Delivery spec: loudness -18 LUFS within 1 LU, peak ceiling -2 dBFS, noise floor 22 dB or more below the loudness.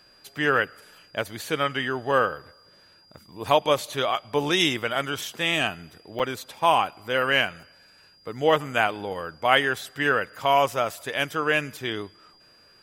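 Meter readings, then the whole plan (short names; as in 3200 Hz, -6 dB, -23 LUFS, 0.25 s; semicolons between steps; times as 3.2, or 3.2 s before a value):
dropouts 1; longest dropout 7.4 ms; steady tone 4800 Hz; tone level -55 dBFS; loudness -24.5 LUFS; peak -3.5 dBFS; loudness target -18.0 LUFS
-> interpolate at 6.19, 7.4 ms; notch 4800 Hz, Q 30; gain +6.5 dB; limiter -2 dBFS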